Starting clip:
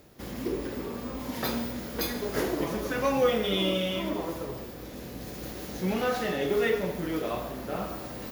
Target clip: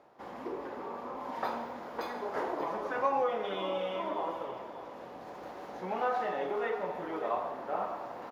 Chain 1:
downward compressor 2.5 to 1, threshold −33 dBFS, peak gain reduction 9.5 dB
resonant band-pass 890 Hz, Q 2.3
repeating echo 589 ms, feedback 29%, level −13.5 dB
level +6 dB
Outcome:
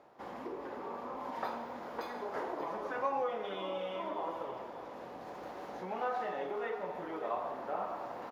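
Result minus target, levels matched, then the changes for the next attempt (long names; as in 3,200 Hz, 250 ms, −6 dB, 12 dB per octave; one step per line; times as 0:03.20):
downward compressor: peak gain reduction +4.5 dB
change: downward compressor 2.5 to 1, threshold −25.5 dBFS, peak gain reduction 5 dB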